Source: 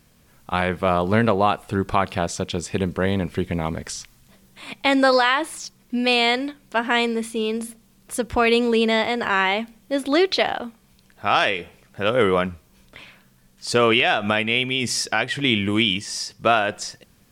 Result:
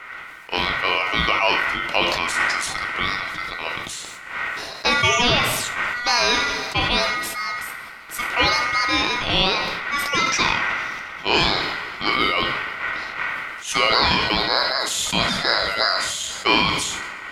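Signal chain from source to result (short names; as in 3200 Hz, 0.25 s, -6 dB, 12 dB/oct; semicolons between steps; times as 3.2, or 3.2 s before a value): wind noise 200 Hz -21 dBFS; weighting filter A; ring modulator 1700 Hz; two-slope reverb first 0.6 s, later 4.1 s, from -20 dB, DRR 5.5 dB; sustainer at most 30 dB/s; gain +2 dB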